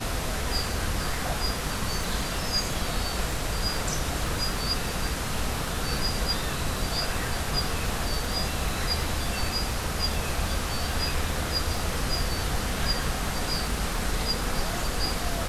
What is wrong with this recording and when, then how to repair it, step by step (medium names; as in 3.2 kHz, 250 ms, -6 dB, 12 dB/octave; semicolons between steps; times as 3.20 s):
crackle 30 per s -31 dBFS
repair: de-click